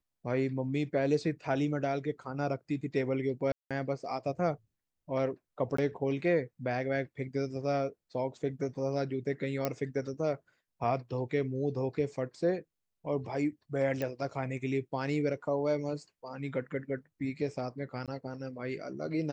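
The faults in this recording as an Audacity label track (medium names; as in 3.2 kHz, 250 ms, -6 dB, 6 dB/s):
3.520000	3.710000	dropout 186 ms
5.770000	5.780000	dropout 14 ms
9.650000	9.650000	pop -15 dBFS
14.020000	14.020000	pop -21 dBFS
18.060000	18.080000	dropout 17 ms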